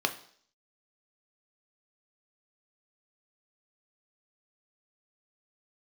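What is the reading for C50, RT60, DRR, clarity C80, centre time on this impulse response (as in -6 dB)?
14.0 dB, 0.55 s, 6.0 dB, 17.5 dB, 8 ms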